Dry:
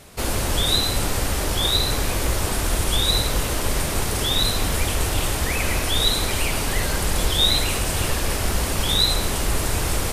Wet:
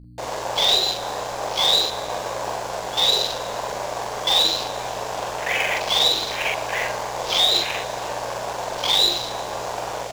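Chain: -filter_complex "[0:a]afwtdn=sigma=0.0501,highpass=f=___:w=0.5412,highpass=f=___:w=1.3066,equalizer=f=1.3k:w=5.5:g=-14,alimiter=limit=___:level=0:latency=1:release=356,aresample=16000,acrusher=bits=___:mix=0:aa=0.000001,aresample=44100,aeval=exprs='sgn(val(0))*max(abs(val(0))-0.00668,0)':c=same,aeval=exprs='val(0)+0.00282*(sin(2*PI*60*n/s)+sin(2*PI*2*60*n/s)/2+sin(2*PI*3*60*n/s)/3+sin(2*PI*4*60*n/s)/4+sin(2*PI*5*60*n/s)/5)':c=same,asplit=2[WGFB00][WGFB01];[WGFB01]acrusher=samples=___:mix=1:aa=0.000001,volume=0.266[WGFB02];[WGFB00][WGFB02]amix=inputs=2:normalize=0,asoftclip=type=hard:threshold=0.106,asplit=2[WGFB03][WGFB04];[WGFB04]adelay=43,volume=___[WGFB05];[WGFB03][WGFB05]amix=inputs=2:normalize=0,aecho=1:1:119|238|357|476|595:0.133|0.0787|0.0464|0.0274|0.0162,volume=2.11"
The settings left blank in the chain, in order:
580, 580, 0.188, 6, 10, 0.794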